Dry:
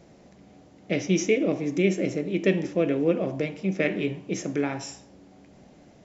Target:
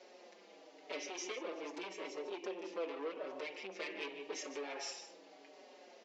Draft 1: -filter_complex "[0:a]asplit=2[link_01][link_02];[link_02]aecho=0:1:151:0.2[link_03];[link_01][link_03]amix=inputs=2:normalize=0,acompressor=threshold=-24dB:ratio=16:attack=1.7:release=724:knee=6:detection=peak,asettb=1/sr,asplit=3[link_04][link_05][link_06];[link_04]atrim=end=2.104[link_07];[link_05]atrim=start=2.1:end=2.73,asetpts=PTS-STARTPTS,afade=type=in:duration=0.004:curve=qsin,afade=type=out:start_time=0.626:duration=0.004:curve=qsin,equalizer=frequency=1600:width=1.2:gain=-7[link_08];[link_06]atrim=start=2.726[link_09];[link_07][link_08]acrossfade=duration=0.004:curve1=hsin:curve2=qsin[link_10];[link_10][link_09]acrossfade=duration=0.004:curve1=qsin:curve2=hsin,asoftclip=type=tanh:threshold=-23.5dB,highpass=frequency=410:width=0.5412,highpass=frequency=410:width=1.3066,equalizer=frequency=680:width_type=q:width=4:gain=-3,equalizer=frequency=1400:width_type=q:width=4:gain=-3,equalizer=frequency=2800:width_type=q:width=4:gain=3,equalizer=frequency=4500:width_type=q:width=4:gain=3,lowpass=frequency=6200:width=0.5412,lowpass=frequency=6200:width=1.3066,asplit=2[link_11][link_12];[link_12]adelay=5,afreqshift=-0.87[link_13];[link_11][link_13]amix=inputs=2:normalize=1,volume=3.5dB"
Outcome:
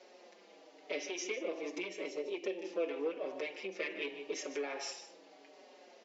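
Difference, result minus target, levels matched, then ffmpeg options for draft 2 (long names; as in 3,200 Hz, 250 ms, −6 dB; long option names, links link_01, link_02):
soft clipping: distortion −12 dB
-filter_complex "[0:a]asplit=2[link_01][link_02];[link_02]aecho=0:1:151:0.2[link_03];[link_01][link_03]amix=inputs=2:normalize=0,acompressor=threshold=-24dB:ratio=16:attack=1.7:release=724:knee=6:detection=peak,asettb=1/sr,asplit=3[link_04][link_05][link_06];[link_04]atrim=end=2.104[link_07];[link_05]atrim=start=2.1:end=2.73,asetpts=PTS-STARTPTS,afade=type=in:duration=0.004:curve=qsin,afade=type=out:start_time=0.626:duration=0.004:curve=qsin,equalizer=frequency=1600:width=1.2:gain=-7[link_08];[link_06]atrim=start=2.726[link_09];[link_07][link_08]acrossfade=duration=0.004:curve1=hsin:curve2=qsin[link_10];[link_10][link_09]acrossfade=duration=0.004:curve1=qsin:curve2=hsin,asoftclip=type=tanh:threshold=-34.5dB,highpass=frequency=410:width=0.5412,highpass=frequency=410:width=1.3066,equalizer=frequency=680:width_type=q:width=4:gain=-3,equalizer=frequency=1400:width_type=q:width=4:gain=-3,equalizer=frequency=2800:width_type=q:width=4:gain=3,equalizer=frequency=4500:width_type=q:width=4:gain=3,lowpass=frequency=6200:width=0.5412,lowpass=frequency=6200:width=1.3066,asplit=2[link_11][link_12];[link_12]adelay=5,afreqshift=-0.87[link_13];[link_11][link_13]amix=inputs=2:normalize=1,volume=3.5dB"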